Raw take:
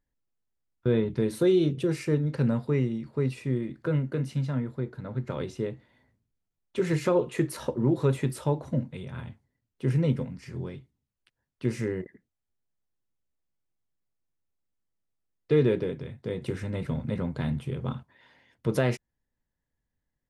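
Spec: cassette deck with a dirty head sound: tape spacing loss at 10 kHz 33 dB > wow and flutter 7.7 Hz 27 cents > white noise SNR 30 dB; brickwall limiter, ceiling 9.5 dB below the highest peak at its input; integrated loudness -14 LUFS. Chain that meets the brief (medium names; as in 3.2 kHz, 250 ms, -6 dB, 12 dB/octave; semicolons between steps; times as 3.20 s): peak limiter -21 dBFS; tape spacing loss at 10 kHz 33 dB; wow and flutter 7.7 Hz 27 cents; white noise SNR 30 dB; trim +19.5 dB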